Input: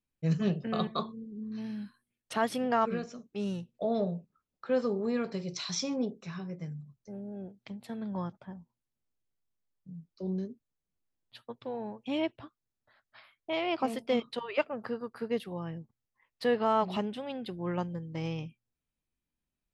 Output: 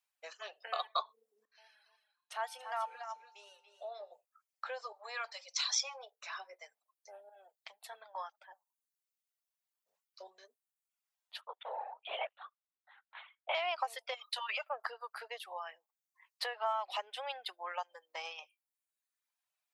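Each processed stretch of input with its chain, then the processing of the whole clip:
0:01.45–0:04.12: tuned comb filter 81 Hz, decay 1.6 s, harmonics odd, mix 80% + single-tap delay 284 ms −7.5 dB
0:04.92–0:06.23: Chebyshev band-stop filter 150–430 Hz, order 4 + parametric band 210 Hz −11.5 dB 3 octaves
0:07.29–0:10.14: high-shelf EQ 8,500 Hz +7 dB + flanger 1 Hz, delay 0.7 ms, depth 6.3 ms, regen −64%
0:11.41–0:13.55: high-pass filter 270 Hz 24 dB per octave + linear-prediction vocoder at 8 kHz whisper
0:14.14–0:14.70: spectral tilt +2.5 dB per octave + notch comb filter 230 Hz + downward compressor 12 to 1, threshold −36 dBFS
whole clip: downward compressor 12 to 1, threshold −32 dBFS; Butterworth high-pass 650 Hz 36 dB per octave; reverb reduction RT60 0.95 s; level +5.5 dB

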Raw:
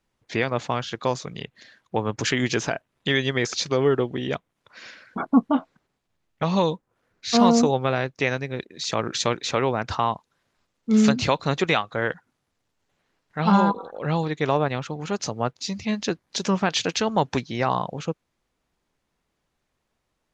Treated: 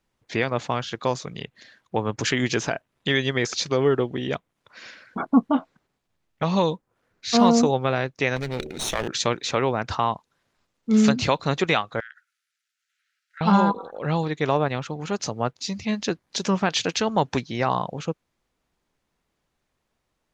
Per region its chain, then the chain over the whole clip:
0:08.36–0:09.08: lower of the sound and its delayed copy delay 0.31 ms + hum removal 75.49 Hz, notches 8 + envelope flattener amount 50%
0:12.00–0:13.41: Chebyshev high-pass filter 1,300 Hz, order 8 + downward compressor, threshold −38 dBFS
whole clip: no processing

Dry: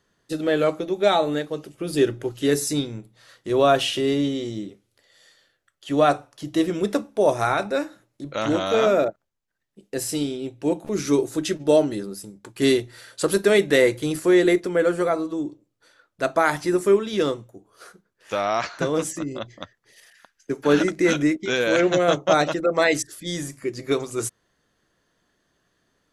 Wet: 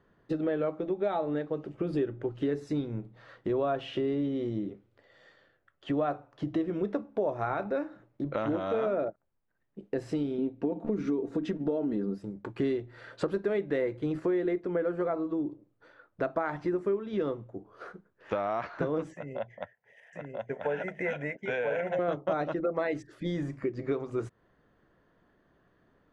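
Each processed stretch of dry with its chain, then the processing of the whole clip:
0:10.38–0:12.18: parametric band 270 Hz +6.5 dB 1.6 octaves + downward compressor 3 to 1, threshold −19 dBFS + comb filter 4.3 ms, depth 47%
0:19.14–0:21.99: high-pass filter 350 Hz 6 dB per octave + phaser with its sweep stopped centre 1,200 Hz, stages 6 + single-tap delay 987 ms −3 dB
whole clip: Bessel low-pass filter 1,300 Hz, order 2; downward compressor 4 to 1, threshold −34 dBFS; level +4.5 dB

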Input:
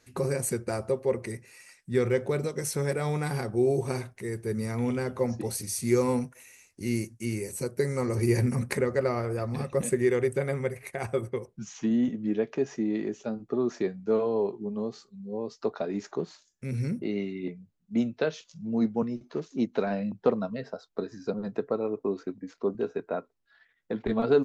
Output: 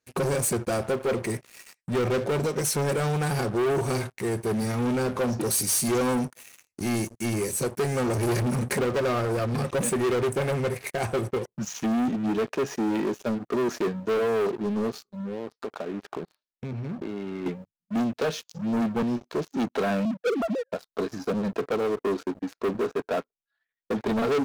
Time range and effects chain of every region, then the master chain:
0:05.41–0:05.88: high-shelf EQ 3,600 Hz +9 dB + notch comb filter 860 Hz
0:15.19–0:17.46: low-pass filter 4,300 Hz 24 dB per octave + high-shelf EQ 2,100 Hz −7 dB + downward compressor 8 to 1, threshold −38 dBFS
0:20.05–0:20.73: three sine waves on the formant tracks + low-pass filter 1,400 Hz 24 dB per octave
whole clip: leveller curve on the samples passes 5; low-shelf EQ 100 Hz −5.5 dB; notch filter 2,000 Hz, Q 22; level −8.5 dB

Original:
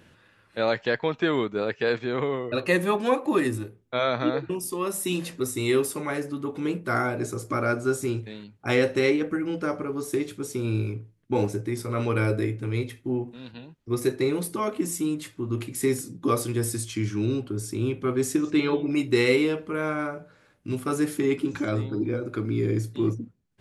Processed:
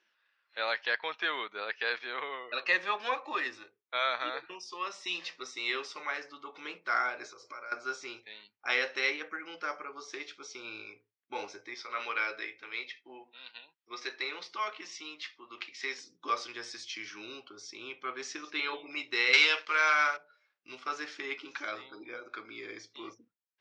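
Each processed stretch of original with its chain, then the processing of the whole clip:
0:07.27–0:07.72: comb filter 2 ms, depth 36% + downward compressor 10 to 1, threshold −33 dBFS
0:11.74–0:15.98: band-pass filter 120–4,500 Hz + spectral tilt +2 dB per octave
0:19.33–0:20.17: spectral tilt +4 dB per octave + leveller curve on the samples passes 2
whole clip: high-pass filter 1,100 Hz 12 dB per octave; noise reduction from a noise print of the clip's start 13 dB; elliptic low-pass filter 5,600 Hz, stop band 60 dB

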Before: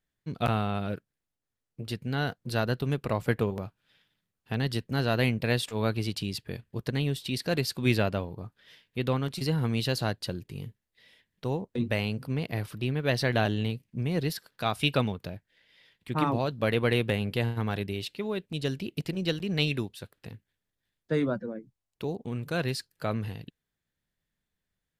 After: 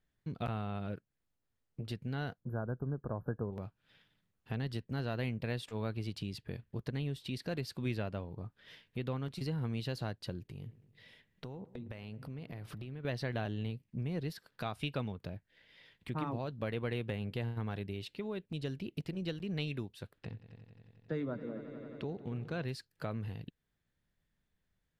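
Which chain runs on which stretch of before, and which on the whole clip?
0:02.40–0:03.53: linear-phase brick-wall band-stop 1,700–11,000 Hz + high-shelf EQ 2,100 Hz −9 dB
0:10.47–0:13.05: downward compressor 5 to 1, threshold −42 dBFS + delay with a low-pass on its return 110 ms, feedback 58%, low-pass 1,800 Hz, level −19 dB
0:20.18–0:22.64: low-pass filter 5,800 Hz + echo machine with several playback heads 89 ms, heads all three, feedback 68%, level −20 dB
whole clip: high-shelf EQ 4,800 Hz −8.5 dB; downward compressor 2 to 1, threshold −47 dBFS; low-shelf EQ 160 Hz +4 dB; level +1.5 dB

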